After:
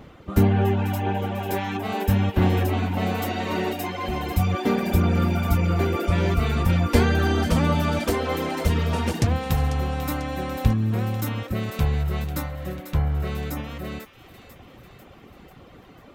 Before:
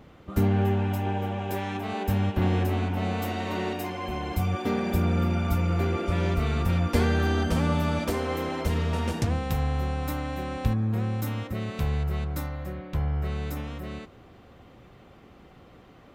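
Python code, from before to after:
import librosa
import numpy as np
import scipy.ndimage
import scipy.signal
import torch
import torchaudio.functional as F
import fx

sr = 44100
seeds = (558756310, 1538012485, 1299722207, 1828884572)

p1 = fx.dereverb_blind(x, sr, rt60_s=0.7)
p2 = p1 + fx.echo_wet_highpass(p1, sr, ms=494, feedback_pct=58, hz=1800.0, wet_db=-10.5, dry=0)
y = p2 * librosa.db_to_amplitude(6.0)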